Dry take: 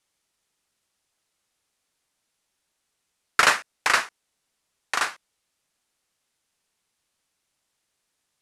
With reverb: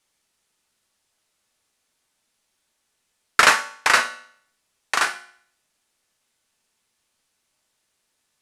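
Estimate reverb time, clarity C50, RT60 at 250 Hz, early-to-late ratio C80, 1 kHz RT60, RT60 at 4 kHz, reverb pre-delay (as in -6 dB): 0.60 s, 13.5 dB, 0.60 s, 17.0 dB, 0.60 s, 0.55 s, 3 ms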